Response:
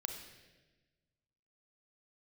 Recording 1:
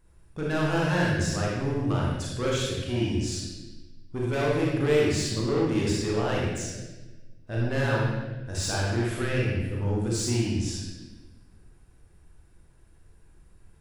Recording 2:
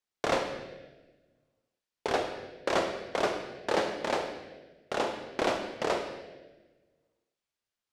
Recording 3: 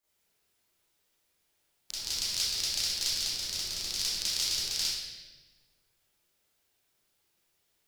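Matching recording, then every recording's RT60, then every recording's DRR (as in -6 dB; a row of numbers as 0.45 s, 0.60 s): 2; 1.2 s, 1.2 s, 1.2 s; -5.0 dB, 4.5 dB, -11.5 dB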